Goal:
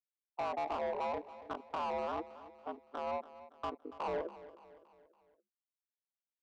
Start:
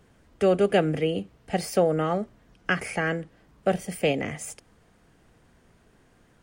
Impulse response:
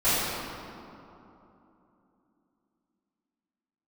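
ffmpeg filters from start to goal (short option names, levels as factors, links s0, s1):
-filter_complex "[0:a]asetrate=83250,aresample=44100,atempo=0.529732,afftfilt=real='re*gte(hypot(re,im),0.1)':imag='im*gte(hypot(re,im),0.1)':win_size=1024:overlap=0.75,acrossover=split=750[s0][s1];[s0]alimiter=level_in=1.41:limit=0.0631:level=0:latency=1:release=36,volume=0.708[s2];[s1]acompressor=threshold=0.0112:ratio=10[s3];[s2][s3]amix=inputs=2:normalize=0,asuperpass=centerf=790:order=8:qfactor=0.84,aeval=exprs='val(0)*sin(2*PI*77*n/s)':c=same,asoftclip=type=hard:threshold=0.0158,adynamicsmooth=sensitivity=4.5:basefreq=630,asplit=2[s4][s5];[s5]aecho=0:1:283|566|849|1132:0.158|0.0777|0.0381|0.0186[s6];[s4][s6]amix=inputs=2:normalize=0,volume=1.88"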